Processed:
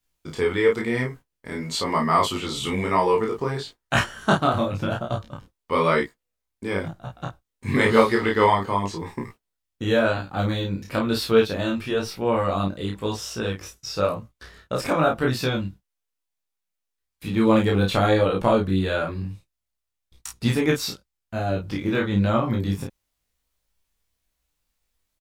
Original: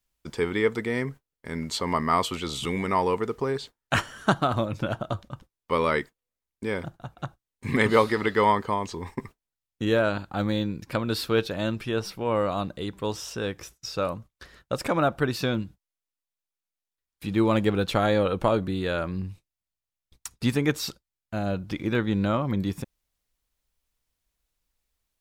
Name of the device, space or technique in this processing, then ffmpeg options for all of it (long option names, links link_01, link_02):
double-tracked vocal: -filter_complex "[0:a]asplit=2[link_01][link_02];[link_02]adelay=31,volume=-3dB[link_03];[link_01][link_03]amix=inputs=2:normalize=0,flanger=delay=17:depth=4.2:speed=0.98,volume=4.5dB"